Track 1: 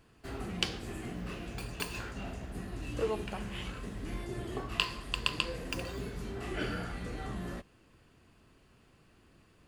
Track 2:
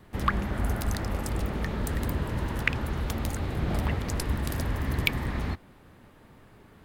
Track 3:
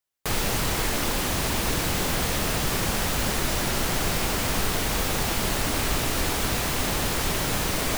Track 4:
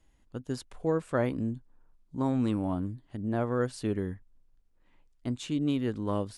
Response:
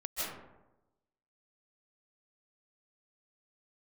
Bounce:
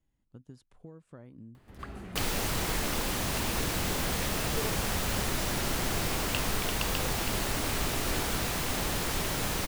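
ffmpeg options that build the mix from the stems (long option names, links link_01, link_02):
-filter_complex "[0:a]adelay=1550,volume=-6dB[link_01];[1:a]acompressor=mode=upward:threshold=-30dB:ratio=2.5,adelay=1550,volume=-12dB[link_02];[2:a]adelay=1900,volume=-5.5dB[link_03];[3:a]equalizer=frequency=150:width=0.71:gain=9,acompressor=threshold=-30dB:ratio=10,volume=-14.5dB,asplit=2[link_04][link_05];[link_05]apad=whole_len=370413[link_06];[link_02][link_06]sidechaincompress=threshold=-56dB:ratio=3:attack=16:release=1230[link_07];[link_01][link_07][link_03][link_04]amix=inputs=4:normalize=0"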